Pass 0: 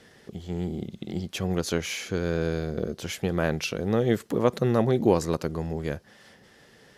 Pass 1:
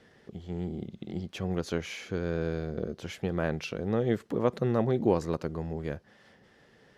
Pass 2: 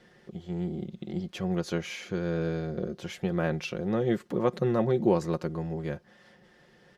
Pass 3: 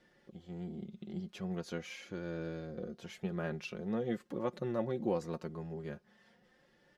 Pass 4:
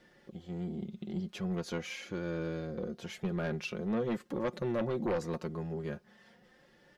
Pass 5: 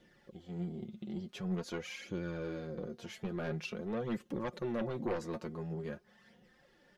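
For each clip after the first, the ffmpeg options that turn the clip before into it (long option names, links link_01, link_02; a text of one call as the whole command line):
ffmpeg -i in.wav -af "lowpass=frequency=2800:poles=1,volume=-4dB" out.wav
ffmpeg -i in.wav -af "aecho=1:1:5.6:0.53" out.wav
ffmpeg -i in.wav -af "flanger=delay=3.4:depth=1.5:regen=47:speed=0.43:shape=sinusoidal,volume=-5dB" out.wav
ffmpeg -i in.wav -af "aeval=exprs='0.1*(cos(1*acos(clip(val(0)/0.1,-1,1)))-cos(1*PI/2))+0.0447*(cos(5*acos(clip(val(0)/0.1,-1,1)))-cos(5*PI/2))':channel_layout=same,volume=-5dB" out.wav
ffmpeg -i in.wav -af "flanger=delay=0.3:depth=8.8:regen=39:speed=0.47:shape=sinusoidal,volume=1dB" out.wav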